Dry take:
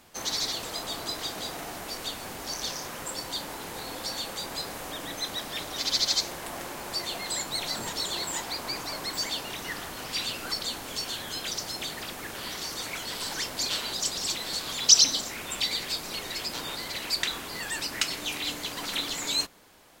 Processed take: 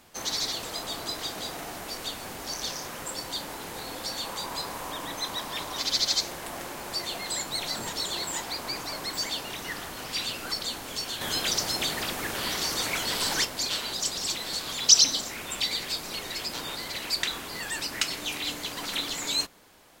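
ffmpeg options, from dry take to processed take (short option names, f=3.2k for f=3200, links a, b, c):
-filter_complex "[0:a]asettb=1/sr,asplit=3[a][b][c];[a]atrim=end=4.224[d];[b]atrim=start=4.22:end=5.83,asetpts=PTS-STARTPTS,afade=t=in:d=0.004:c=qsin,afade=t=out:st=1.606:d=0.004:c=qsin,equalizer=f=1k:t=o:w=0.38:g=8.5[e];[c]atrim=start=5.826[f];[d][e]acrossfade=d=0.004:c1=hsin:c2=qsin[g];[g][f]acrossfade=d=0.004:c1=qsin:c2=hsin,asettb=1/sr,asplit=3[h][i][j];[h]atrim=end=11.214[k];[i]atrim=start=11.21:end=13.45,asetpts=PTS-STARTPTS,afade=t=in:d=0.004:c=qsin,afade=t=out:st=2.236:d=0.004:c=qsin,acontrast=50[l];[j]atrim=start=13.446[m];[k][l]acrossfade=d=0.004:c1=hsin:c2=qsin[n];[n][m]acrossfade=d=0.004:c1=qsin:c2=hsin"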